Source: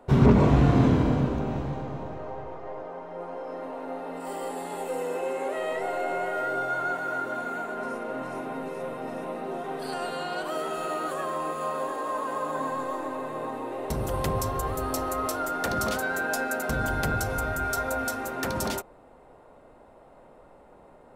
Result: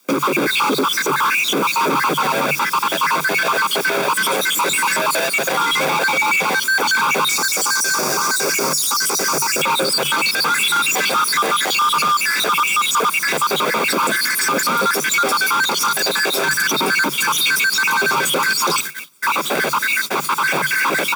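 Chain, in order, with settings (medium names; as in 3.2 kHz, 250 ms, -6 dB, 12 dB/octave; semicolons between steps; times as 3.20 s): random holes in the spectrogram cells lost 72%; recorder AGC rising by 48 dB/s; overdrive pedal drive 36 dB, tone 5.6 kHz, clips at -4.5 dBFS; added noise white -28 dBFS; saturation -6 dBFS, distortion -26 dB; comb 0.9 ms, depth 78%; gate -19 dBFS, range -29 dB; frequency shift +140 Hz; 7.29–9.62 s: resonant high shelf 4.3 kHz +8.5 dB, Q 3; peak limiter -9.5 dBFS, peak gain reduction 12.5 dB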